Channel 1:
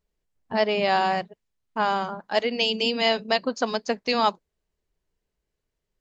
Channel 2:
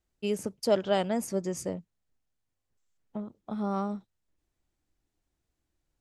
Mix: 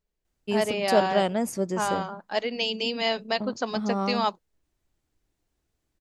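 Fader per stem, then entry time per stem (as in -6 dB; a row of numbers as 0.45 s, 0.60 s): -4.0 dB, +3.0 dB; 0.00 s, 0.25 s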